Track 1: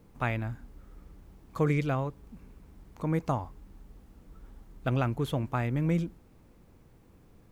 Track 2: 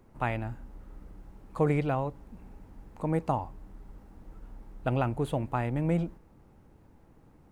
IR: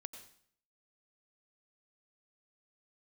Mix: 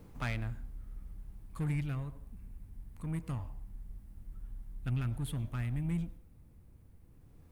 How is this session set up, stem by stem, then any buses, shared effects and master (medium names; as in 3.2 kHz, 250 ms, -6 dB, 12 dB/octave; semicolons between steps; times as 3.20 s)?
+0.5 dB, 0.00 s, send -12.5 dB, gain riding; saturation -29 dBFS, distortion -11 dB; auto duck -14 dB, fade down 0.75 s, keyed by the second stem
+2.0 dB, 0.00 s, polarity flipped, no send, FFT filter 100 Hz 0 dB, 1.1 kHz -30 dB, 3.1 kHz +1 dB; high-order bell 4.3 kHz -15 dB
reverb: on, RT60 0.60 s, pre-delay 84 ms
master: none